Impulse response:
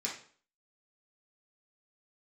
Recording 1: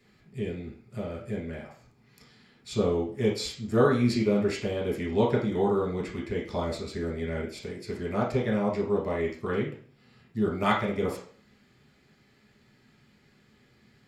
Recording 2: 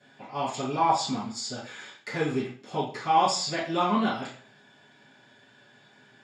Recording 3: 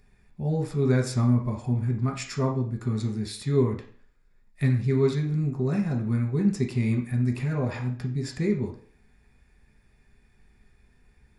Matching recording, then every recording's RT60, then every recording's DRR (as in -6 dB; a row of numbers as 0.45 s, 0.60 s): 1; 0.45 s, 0.45 s, 0.45 s; -4.5 dB, -14.0 dB, 0.5 dB